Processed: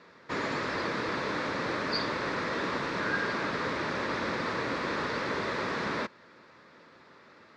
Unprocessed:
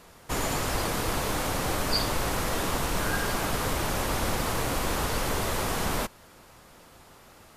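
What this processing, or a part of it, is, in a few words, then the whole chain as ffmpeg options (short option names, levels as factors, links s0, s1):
kitchen radio: -af "highpass=200,equalizer=f=750:t=q:w=4:g=-10,equalizer=f=1800:t=q:w=4:g=4,equalizer=f=3000:t=q:w=4:g=-9,lowpass=f=4300:w=0.5412,lowpass=f=4300:w=1.3066"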